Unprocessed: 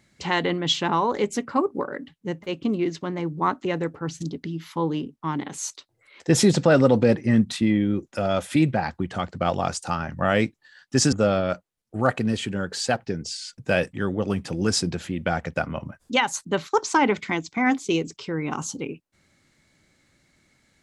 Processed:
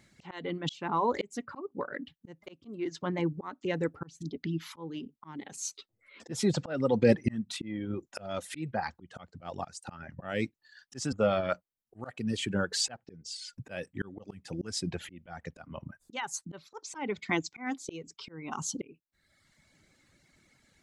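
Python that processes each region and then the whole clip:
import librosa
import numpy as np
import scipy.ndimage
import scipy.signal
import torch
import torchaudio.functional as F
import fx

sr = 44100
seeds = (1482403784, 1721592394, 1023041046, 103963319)

y = fx.chain(x, sr, fx.peak_eq(hz=230.0, db=12.0, octaves=0.91),
    fx.notch(hz=860.0, q=19.0),
    fx.ensemble(), at=(5.56, 6.32))
y = fx.dereverb_blind(y, sr, rt60_s=0.96)
y = fx.auto_swell(y, sr, attack_ms=525.0)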